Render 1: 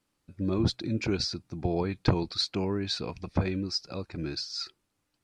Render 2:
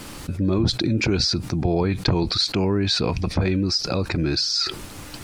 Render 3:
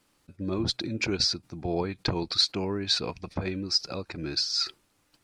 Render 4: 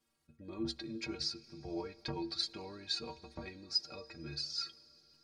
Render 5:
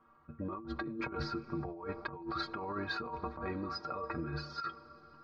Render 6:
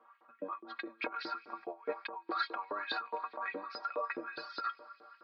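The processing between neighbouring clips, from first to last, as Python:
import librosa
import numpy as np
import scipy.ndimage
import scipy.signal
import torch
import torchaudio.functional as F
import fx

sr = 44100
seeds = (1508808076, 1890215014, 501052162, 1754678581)

y1 = fx.low_shelf(x, sr, hz=110.0, db=4.5)
y1 = fx.env_flatten(y1, sr, amount_pct=70)
y2 = fx.low_shelf(y1, sr, hz=220.0, db=-7.5)
y2 = fx.upward_expand(y2, sr, threshold_db=-39.0, expansion=2.5)
y3 = fx.stiff_resonator(y2, sr, f0_hz=69.0, decay_s=0.36, stiffness=0.03)
y3 = fx.rev_freeverb(y3, sr, rt60_s=4.7, hf_ratio=0.95, predelay_ms=20, drr_db=19.5)
y3 = y3 * librosa.db_to_amplitude(-3.5)
y4 = fx.lowpass_res(y3, sr, hz=1200.0, q=5.5)
y4 = fx.over_compress(y4, sr, threshold_db=-48.0, ratio=-1.0)
y4 = y4 * librosa.db_to_amplitude(8.5)
y5 = fx.filter_lfo_highpass(y4, sr, shape='saw_up', hz=4.8, low_hz=390.0, high_hz=3300.0, q=2.4)
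y5 = fx.cabinet(y5, sr, low_hz=210.0, low_slope=12, high_hz=4300.0, hz=(260.0, 400.0, 1300.0), db=(4, -5, -4))
y5 = y5 * librosa.db_to_amplitude(2.0)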